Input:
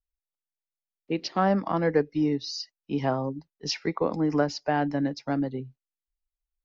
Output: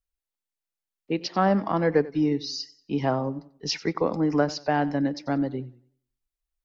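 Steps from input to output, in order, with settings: warbling echo 94 ms, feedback 33%, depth 87 cents, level -19 dB; gain +1.5 dB

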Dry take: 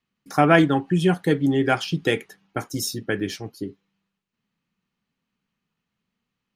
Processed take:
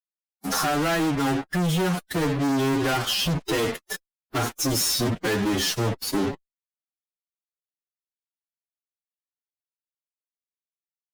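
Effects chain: compressor 8:1, threshold -29 dBFS, peak gain reduction 18.5 dB; Butterworth band-stop 2300 Hz, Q 5.8; fuzz box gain 50 dB, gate -47 dBFS; time stretch by phase-locked vocoder 1.7×; gain -8 dB

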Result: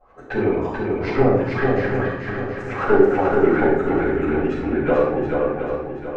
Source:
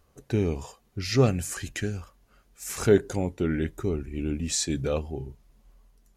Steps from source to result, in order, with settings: tone controls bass -12 dB, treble +7 dB; treble ducked by the level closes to 640 Hz, closed at -19.5 dBFS; in parallel at -1 dB: compressor, threshold -40 dBFS, peak gain reduction 21 dB; on the sum: LFO low-pass saw up 9.2 Hz 680–2100 Hz; added harmonics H 4 -21 dB, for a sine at -9 dBFS; on a send: swung echo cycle 0.727 s, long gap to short 1.5:1, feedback 37%, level -3.5 dB; on the sum: shoebox room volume 250 m³, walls mixed, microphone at 6.7 m; gain -8.5 dB

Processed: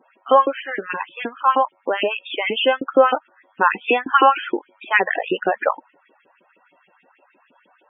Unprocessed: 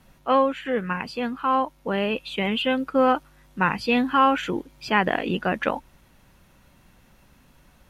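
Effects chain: LFO high-pass saw up 6.4 Hz 310–3000 Hz; downsampling 8000 Hz; loudest bins only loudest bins 32; gain +3 dB

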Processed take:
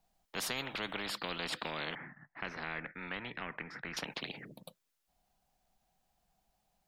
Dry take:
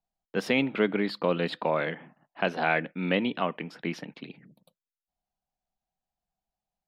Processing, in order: 1.95–3.97 EQ curve 130 Hz 0 dB, 560 Hz -18 dB, 1100 Hz -9 dB, 1900 Hz +6 dB, 2900 Hz -24 dB, 5700 Hz -16 dB, 9400 Hz -27 dB; spectral compressor 4:1; gain -8.5 dB

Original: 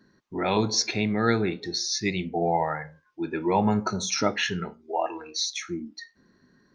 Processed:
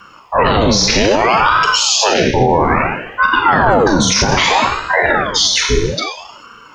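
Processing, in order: in parallel at -3 dB: compressor, threshold -36 dBFS, peak gain reduction 17.5 dB; on the sum: frequency shift -110 Hz; Schroeder reverb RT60 0.93 s, combs from 29 ms, DRR 2.5 dB; maximiser +18.5 dB; ring modulator with a swept carrier 740 Hz, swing 75%, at 0.61 Hz

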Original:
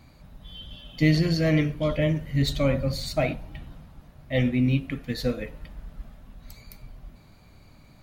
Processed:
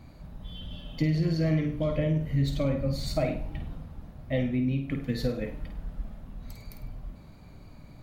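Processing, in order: tilt shelf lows +4 dB, about 1100 Hz; compressor 4:1, threshold -25 dBFS, peak gain reduction 12 dB; flutter echo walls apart 8.7 m, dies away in 0.4 s

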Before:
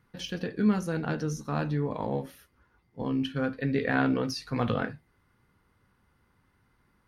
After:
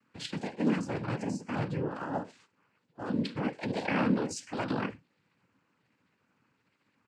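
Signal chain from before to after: trilling pitch shifter +4.5 st, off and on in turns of 0.386 s; comb 4.5 ms, depth 36%; noise vocoder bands 8; gain -3 dB

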